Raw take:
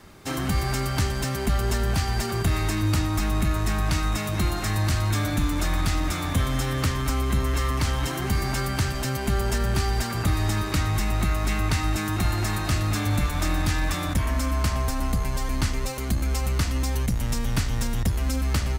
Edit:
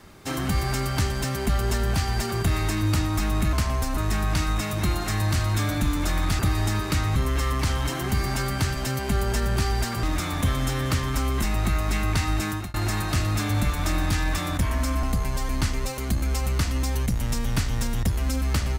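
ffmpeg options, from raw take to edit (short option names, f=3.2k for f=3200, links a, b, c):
-filter_complex "[0:a]asplit=9[a][b][c][d][e][f][g][h][i];[a]atrim=end=3.532[j];[b]atrim=start=14.588:end=15.032[k];[c]atrim=start=3.528:end=5.952[l];[d]atrim=start=10.208:end=10.982[m];[e]atrim=start=7.338:end=10.212[n];[f]atrim=start=5.948:end=7.342[o];[g]atrim=start=10.978:end=12.3,asetpts=PTS-STARTPTS,afade=t=out:st=1.072:d=0.25[p];[h]atrim=start=12.3:end=14.592,asetpts=PTS-STARTPTS,afade=t=in:d=0.004:c=hsin[q];[i]atrim=start=15.028[r];[j][k]acrossfade=d=0.004:c1=hsin:c2=hsin[s];[s][l]acrossfade=d=0.004:c1=hsin:c2=hsin[t];[t][m]acrossfade=d=0.004:c1=hsin:c2=hsin[u];[u][n]acrossfade=d=0.004:c1=hsin:c2=hsin[v];[v][o]acrossfade=d=0.004:c1=hsin:c2=hsin[w];[p][q]concat=n=2:v=0:a=1[x];[w][x]acrossfade=d=0.004:c1=hsin:c2=hsin[y];[y][r]acrossfade=d=0.004:c1=hsin:c2=hsin"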